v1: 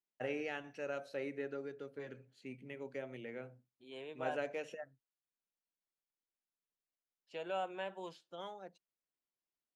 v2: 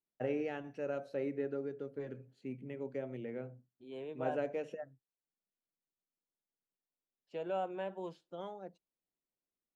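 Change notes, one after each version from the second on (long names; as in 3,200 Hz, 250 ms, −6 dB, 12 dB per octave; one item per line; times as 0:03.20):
master: add tilt shelving filter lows +7 dB, about 930 Hz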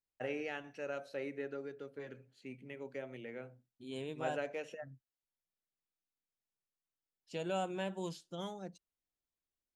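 second voice: remove three-way crossover with the lows and the highs turned down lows −16 dB, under 420 Hz, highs −15 dB, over 3,400 Hz
master: add tilt shelving filter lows −7 dB, about 930 Hz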